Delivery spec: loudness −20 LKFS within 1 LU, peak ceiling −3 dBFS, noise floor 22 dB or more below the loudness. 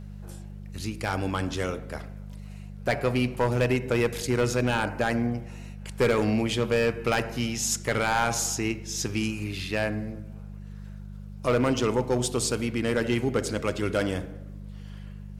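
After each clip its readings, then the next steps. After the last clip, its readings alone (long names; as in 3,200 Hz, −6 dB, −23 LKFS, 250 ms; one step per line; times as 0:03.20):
share of clipped samples 0.8%; peaks flattened at −16.5 dBFS; mains hum 50 Hz; hum harmonics up to 200 Hz; level of the hum −38 dBFS; integrated loudness −27.0 LKFS; sample peak −16.5 dBFS; target loudness −20.0 LKFS
→ clipped peaks rebuilt −16.5 dBFS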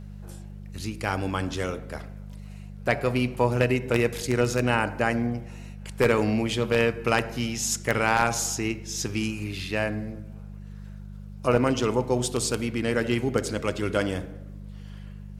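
share of clipped samples 0.0%; mains hum 50 Hz; hum harmonics up to 200 Hz; level of the hum −38 dBFS
→ hum removal 50 Hz, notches 4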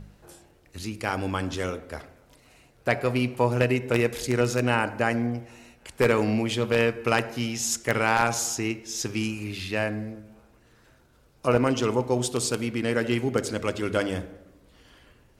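mains hum none found; integrated loudness −26.0 LKFS; sample peak −7.0 dBFS; target loudness −20.0 LKFS
→ level +6 dB
brickwall limiter −3 dBFS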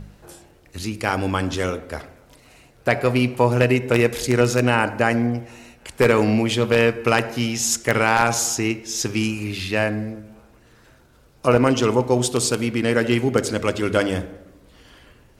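integrated loudness −20.5 LKFS; sample peak −3.0 dBFS; background noise floor −53 dBFS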